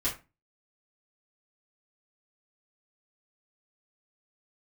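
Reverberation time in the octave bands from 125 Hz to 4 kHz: 0.40, 0.40, 0.30, 0.25, 0.25, 0.20 seconds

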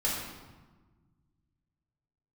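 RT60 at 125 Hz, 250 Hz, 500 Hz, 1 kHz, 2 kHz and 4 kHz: 2.6, 2.0, 1.3, 1.3, 1.0, 0.90 seconds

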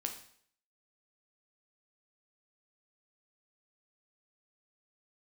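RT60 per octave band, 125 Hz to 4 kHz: 0.60, 0.60, 0.60, 0.60, 0.60, 0.60 seconds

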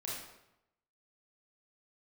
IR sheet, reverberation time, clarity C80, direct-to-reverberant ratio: 0.85 s, 4.0 dB, −6.0 dB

